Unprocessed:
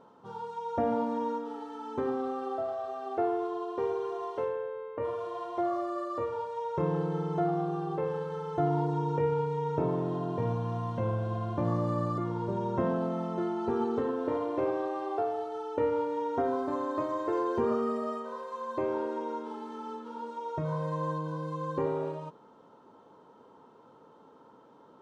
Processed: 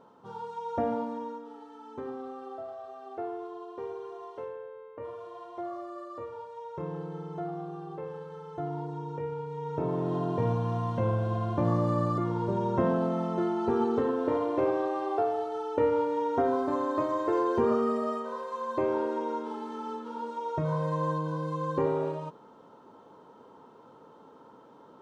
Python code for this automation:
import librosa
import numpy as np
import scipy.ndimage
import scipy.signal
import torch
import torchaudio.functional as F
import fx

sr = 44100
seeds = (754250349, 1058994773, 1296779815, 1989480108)

y = fx.gain(x, sr, db=fx.line((0.8, 0.0), (1.36, -7.0), (9.43, -7.0), (10.17, 3.0)))